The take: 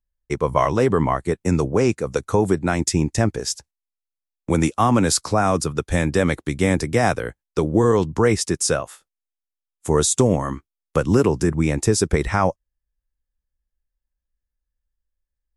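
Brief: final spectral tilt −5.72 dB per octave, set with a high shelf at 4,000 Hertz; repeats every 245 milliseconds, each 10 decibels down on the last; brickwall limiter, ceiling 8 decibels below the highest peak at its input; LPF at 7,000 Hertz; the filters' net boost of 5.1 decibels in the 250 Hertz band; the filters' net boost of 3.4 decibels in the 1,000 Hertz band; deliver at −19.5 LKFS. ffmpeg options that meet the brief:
ffmpeg -i in.wav -af "lowpass=7000,equalizer=frequency=250:width_type=o:gain=6.5,equalizer=frequency=1000:width_type=o:gain=4.5,highshelf=frequency=4000:gain=-8.5,alimiter=limit=-8.5dB:level=0:latency=1,aecho=1:1:245|490|735|980:0.316|0.101|0.0324|0.0104,volume=1dB" out.wav

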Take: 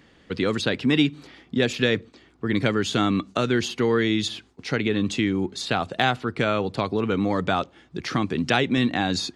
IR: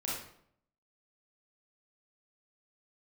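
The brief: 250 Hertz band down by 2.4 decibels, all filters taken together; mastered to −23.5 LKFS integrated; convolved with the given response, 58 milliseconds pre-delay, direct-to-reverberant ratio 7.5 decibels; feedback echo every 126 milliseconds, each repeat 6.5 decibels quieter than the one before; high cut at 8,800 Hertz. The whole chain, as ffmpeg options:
-filter_complex "[0:a]lowpass=8800,equalizer=frequency=250:width_type=o:gain=-3,aecho=1:1:126|252|378|504|630|756:0.473|0.222|0.105|0.0491|0.0231|0.0109,asplit=2[link_01][link_02];[1:a]atrim=start_sample=2205,adelay=58[link_03];[link_02][link_03]afir=irnorm=-1:irlink=0,volume=-11dB[link_04];[link_01][link_04]amix=inputs=2:normalize=0"

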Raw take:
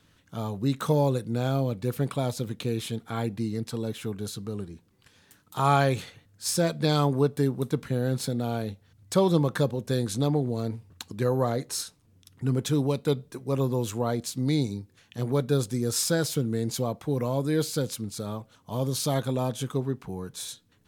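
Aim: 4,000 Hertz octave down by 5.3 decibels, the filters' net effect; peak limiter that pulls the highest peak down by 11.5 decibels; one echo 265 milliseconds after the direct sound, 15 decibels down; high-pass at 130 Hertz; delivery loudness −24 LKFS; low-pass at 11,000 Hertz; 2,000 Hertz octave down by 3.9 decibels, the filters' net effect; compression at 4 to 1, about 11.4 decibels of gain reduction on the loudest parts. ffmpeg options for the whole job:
ffmpeg -i in.wav -af "highpass=130,lowpass=11000,equalizer=frequency=2000:width_type=o:gain=-4.5,equalizer=frequency=4000:width_type=o:gain=-5.5,acompressor=threshold=-32dB:ratio=4,alimiter=level_in=6.5dB:limit=-24dB:level=0:latency=1,volume=-6.5dB,aecho=1:1:265:0.178,volume=16.5dB" out.wav

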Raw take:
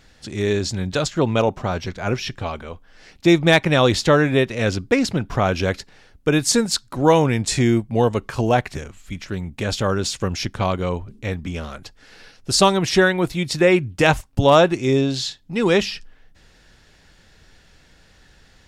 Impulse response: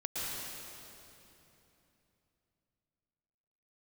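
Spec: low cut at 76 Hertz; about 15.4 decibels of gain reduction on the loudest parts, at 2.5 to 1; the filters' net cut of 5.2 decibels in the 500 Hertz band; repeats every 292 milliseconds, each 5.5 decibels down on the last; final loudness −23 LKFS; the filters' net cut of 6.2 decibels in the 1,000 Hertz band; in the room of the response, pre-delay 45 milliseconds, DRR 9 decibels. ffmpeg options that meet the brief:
-filter_complex "[0:a]highpass=76,equalizer=frequency=500:width_type=o:gain=-5,equalizer=frequency=1000:width_type=o:gain=-6.5,acompressor=threshold=-37dB:ratio=2.5,aecho=1:1:292|584|876|1168|1460|1752|2044:0.531|0.281|0.149|0.079|0.0419|0.0222|0.0118,asplit=2[link_01][link_02];[1:a]atrim=start_sample=2205,adelay=45[link_03];[link_02][link_03]afir=irnorm=-1:irlink=0,volume=-13.5dB[link_04];[link_01][link_04]amix=inputs=2:normalize=0,volume=10.5dB"

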